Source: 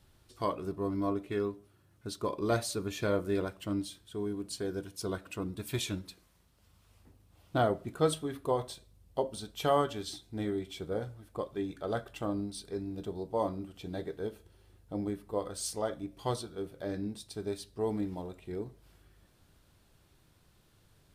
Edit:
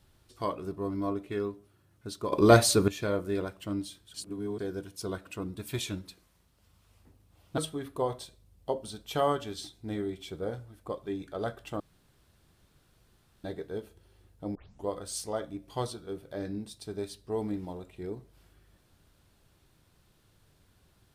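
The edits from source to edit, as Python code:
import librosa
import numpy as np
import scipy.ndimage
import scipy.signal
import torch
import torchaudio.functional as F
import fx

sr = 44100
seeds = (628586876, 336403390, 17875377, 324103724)

y = fx.edit(x, sr, fx.clip_gain(start_s=2.32, length_s=0.56, db=11.5),
    fx.reverse_span(start_s=4.14, length_s=0.45),
    fx.cut(start_s=7.58, length_s=0.49),
    fx.room_tone_fill(start_s=12.29, length_s=1.64),
    fx.tape_start(start_s=15.04, length_s=0.32), tone=tone)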